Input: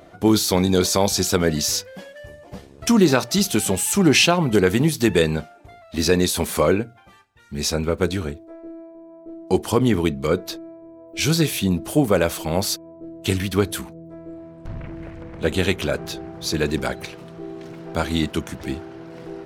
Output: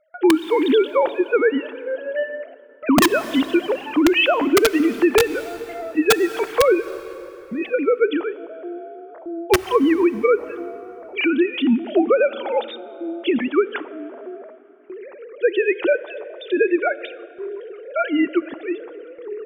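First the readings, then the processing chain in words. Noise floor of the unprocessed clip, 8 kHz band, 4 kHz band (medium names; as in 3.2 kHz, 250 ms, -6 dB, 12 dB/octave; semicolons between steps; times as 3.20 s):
-47 dBFS, -9.5 dB, -4.0 dB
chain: formants replaced by sine waves; gate with hold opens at -38 dBFS; integer overflow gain 6 dB; plate-style reverb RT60 3.3 s, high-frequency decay 0.7×, DRR 17.5 dB; compression 5:1, threshold -18 dBFS, peak gain reduction 8.5 dB; trim +5.5 dB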